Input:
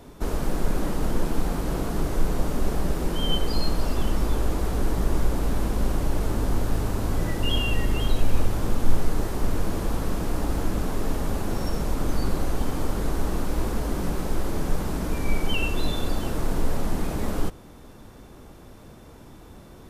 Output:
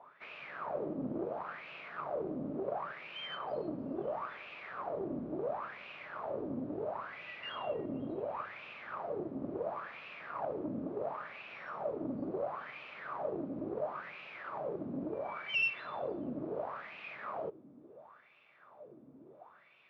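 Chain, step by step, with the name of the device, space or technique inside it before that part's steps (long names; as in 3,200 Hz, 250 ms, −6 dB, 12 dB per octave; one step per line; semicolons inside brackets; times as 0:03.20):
wah-wah guitar rig (LFO wah 0.72 Hz 260–2,600 Hz, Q 6.9; tube saturation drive 31 dB, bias 0.45; loudspeaker in its box 100–4,200 Hz, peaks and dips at 140 Hz +8 dB, 290 Hz −4 dB, 610 Hz +8 dB, 1,200 Hz +5 dB, 2,400 Hz +4 dB)
level +4 dB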